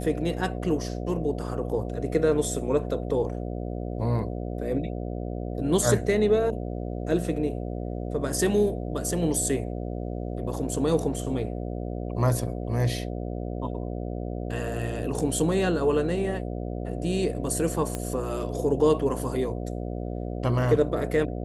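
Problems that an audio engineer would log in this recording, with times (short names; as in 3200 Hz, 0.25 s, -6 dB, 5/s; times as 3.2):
buzz 60 Hz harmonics 12 -32 dBFS
17.95 pop -15 dBFS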